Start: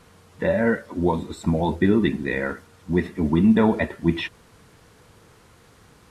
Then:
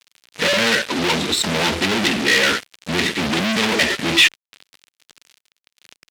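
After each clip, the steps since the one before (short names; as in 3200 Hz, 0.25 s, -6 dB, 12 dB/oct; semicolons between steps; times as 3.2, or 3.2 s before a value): fuzz box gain 39 dB, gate -44 dBFS; weighting filter D; gain -5.5 dB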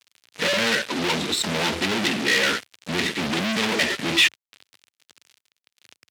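HPF 82 Hz 24 dB/oct; gain -4.5 dB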